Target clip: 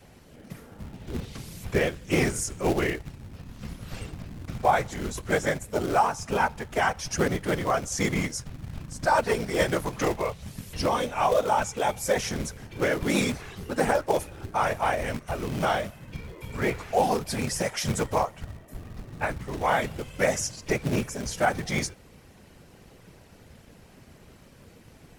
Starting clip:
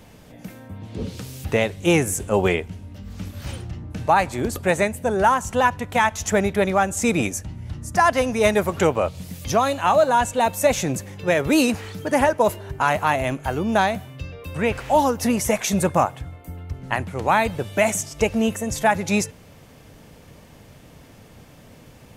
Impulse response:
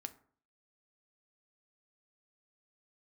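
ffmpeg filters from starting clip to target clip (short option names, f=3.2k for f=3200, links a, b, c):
-filter_complex "[0:a]afftfilt=real='hypot(re,im)*cos(2*PI*random(0))':imag='hypot(re,im)*sin(2*PI*random(1))':win_size=512:overlap=0.75,acrossover=split=570[a][b];[a]acrusher=bits=3:mode=log:mix=0:aa=0.000001[c];[c][b]amix=inputs=2:normalize=0,adynamicequalizer=threshold=0.0112:dfrequency=300:dqfactor=0.86:tfrequency=300:tqfactor=0.86:attack=5:release=100:ratio=0.375:range=3:mode=cutabove:tftype=bell,asetrate=38808,aresample=44100,volume=1dB"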